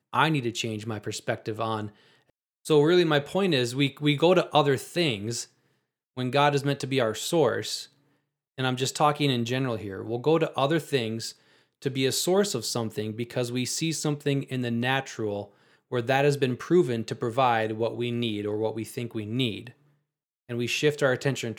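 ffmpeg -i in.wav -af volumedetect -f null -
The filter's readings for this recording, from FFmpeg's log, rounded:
mean_volume: -26.8 dB
max_volume: -6.1 dB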